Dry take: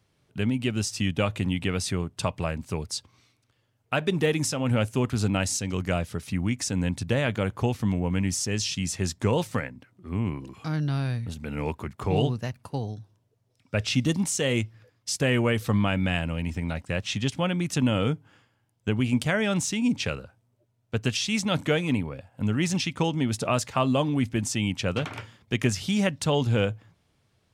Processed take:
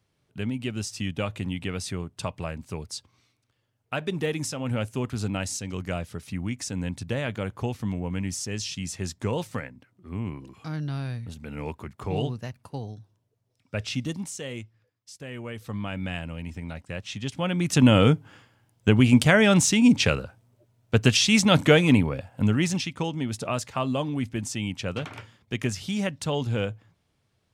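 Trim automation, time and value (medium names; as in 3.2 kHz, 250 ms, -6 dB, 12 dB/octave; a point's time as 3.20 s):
13.83 s -4 dB
15.15 s -17 dB
16.03 s -6 dB
17.20 s -6 dB
17.86 s +7 dB
22.29 s +7 dB
22.92 s -3.5 dB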